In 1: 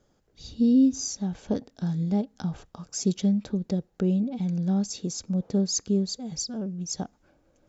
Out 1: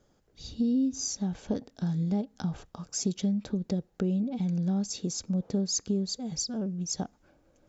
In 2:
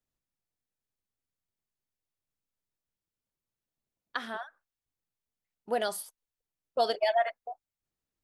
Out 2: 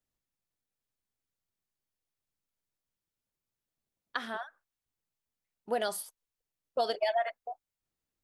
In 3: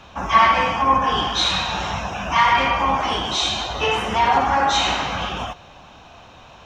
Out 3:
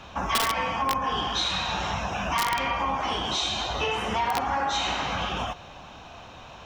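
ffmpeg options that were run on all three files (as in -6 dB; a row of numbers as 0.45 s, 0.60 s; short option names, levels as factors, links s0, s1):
-af "aeval=exprs='(mod(2.24*val(0)+1,2)-1)/2.24':c=same,acompressor=threshold=0.0501:ratio=3"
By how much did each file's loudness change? -3.5 LU, -2.5 LU, -7.5 LU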